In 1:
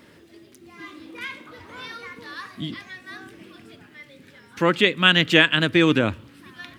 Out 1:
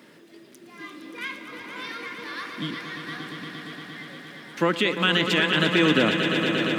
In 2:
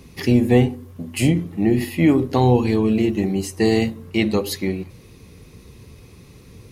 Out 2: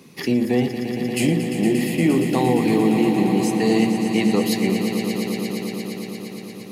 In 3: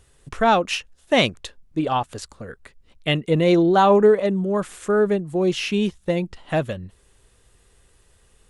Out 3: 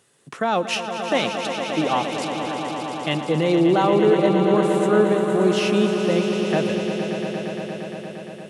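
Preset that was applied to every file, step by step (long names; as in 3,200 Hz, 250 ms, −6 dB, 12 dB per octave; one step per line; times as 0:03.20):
high-pass filter 150 Hz 24 dB per octave
brickwall limiter −11 dBFS
echo that builds up and dies away 116 ms, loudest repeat 5, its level −10 dB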